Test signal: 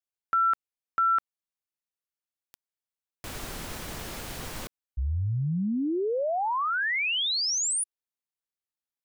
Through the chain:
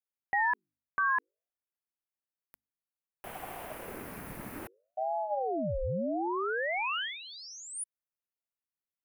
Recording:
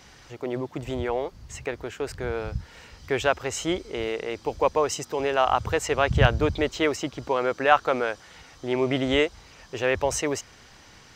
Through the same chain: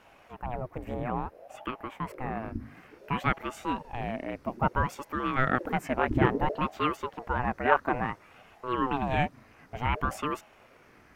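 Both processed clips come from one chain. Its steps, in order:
flat-topped bell 4,900 Hz −14.5 dB
hum removal 50.45 Hz, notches 2
ring modulator whose carrier an LFO sweeps 460 Hz, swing 65%, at 0.58 Hz
level −1.5 dB

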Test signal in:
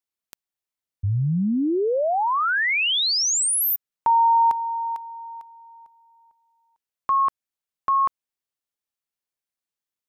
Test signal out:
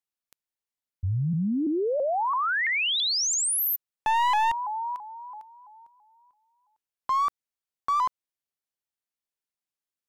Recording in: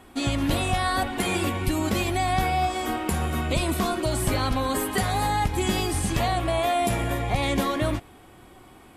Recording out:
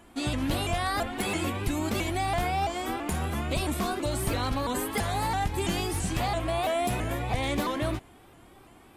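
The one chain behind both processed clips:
wavefolder on the positive side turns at −17 dBFS
pitch modulation by a square or saw wave saw up 3 Hz, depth 160 cents
level −4 dB

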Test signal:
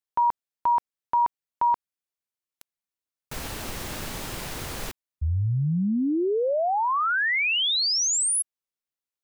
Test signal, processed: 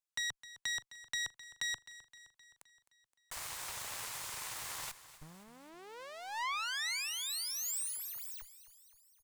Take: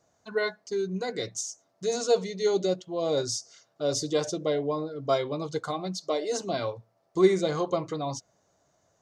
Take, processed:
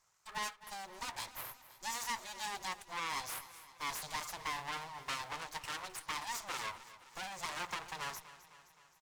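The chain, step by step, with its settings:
one scale factor per block 7 bits
downward compressor 6 to 1, threshold −25 dBFS
full-wave rectification
graphic EQ with 10 bands 125 Hz +6 dB, 250 Hz −8 dB, 1,000 Hz +11 dB, 2,000 Hz +6 dB, 4,000 Hz +3 dB, 8,000 Hz +6 dB
tube saturation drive 25 dB, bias 0.75
high-shelf EQ 3,200 Hz +9 dB
repeating echo 260 ms, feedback 58%, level −16 dB
level −7.5 dB

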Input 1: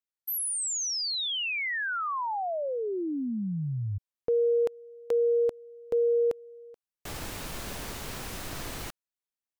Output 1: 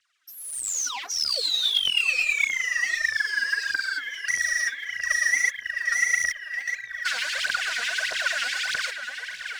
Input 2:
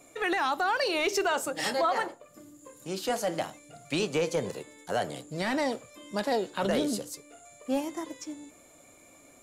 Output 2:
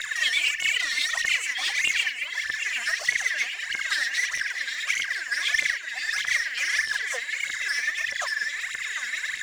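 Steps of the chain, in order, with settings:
band-splitting scrambler in four parts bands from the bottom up 4123
envelope filter 250–1,400 Hz, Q 2.6, down, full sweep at −29 dBFS
high-shelf EQ 5,200 Hz +7 dB
mains-hum notches 50/100/150/200/250/300/350/400/450 Hz
delay that swaps between a low-pass and a high-pass 376 ms, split 1,300 Hz, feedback 84%, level −13 dB
mid-hump overdrive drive 30 dB, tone 8,000 Hz, clips at −28.5 dBFS
meter weighting curve ITU-R 468
auto-filter high-pass sine 9.2 Hz 570–3,000 Hz
phase shifter 1.6 Hz, delay 4.4 ms, feedback 76%
notch filter 870 Hz, Q 5.4
level −1 dB

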